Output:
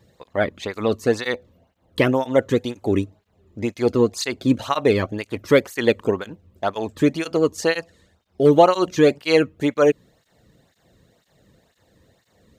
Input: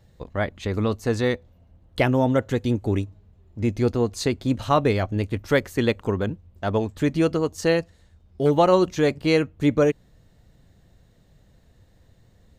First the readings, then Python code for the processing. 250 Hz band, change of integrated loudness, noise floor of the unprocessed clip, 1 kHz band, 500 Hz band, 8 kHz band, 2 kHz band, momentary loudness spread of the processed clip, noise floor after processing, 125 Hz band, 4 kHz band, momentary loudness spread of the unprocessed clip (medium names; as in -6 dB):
+1.5 dB, +2.5 dB, -57 dBFS, +2.5 dB, +3.5 dB, +3.5 dB, +3.0 dB, 11 LU, -66 dBFS, -3.5 dB, +3.5 dB, 8 LU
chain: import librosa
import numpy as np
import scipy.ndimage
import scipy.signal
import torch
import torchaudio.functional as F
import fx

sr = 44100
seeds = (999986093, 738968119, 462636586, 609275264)

y = fx.flanger_cancel(x, sr, hz=2.0, depth_ms=1.5)
y = F.gain(torch.from_numpy(y), 6.5).numpy()